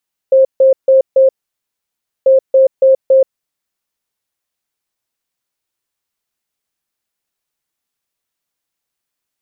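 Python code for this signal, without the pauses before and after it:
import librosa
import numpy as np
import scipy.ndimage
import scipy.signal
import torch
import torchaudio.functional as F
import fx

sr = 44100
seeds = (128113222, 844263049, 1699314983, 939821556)

y = fx.beep_pattern(sr, wave='sine', hz=531.0, on_s=0.13, off_s=0.15, beeps=4, pause_s=0.97, groups=2, level_db=-4.5)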